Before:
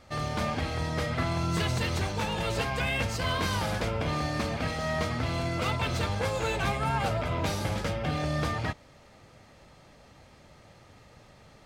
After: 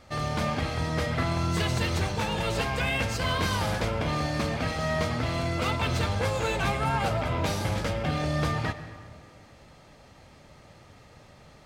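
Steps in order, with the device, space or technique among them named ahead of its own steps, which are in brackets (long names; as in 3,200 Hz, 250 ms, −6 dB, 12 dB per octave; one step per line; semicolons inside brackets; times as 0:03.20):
saturated reverb return (on a send at −10.5 dB: convolution reverb RT60 1.8 s, pre-delay 86 ms + soft clipping −24 dBFS, distortion −14 dB)
on the sum: level +1.5 dB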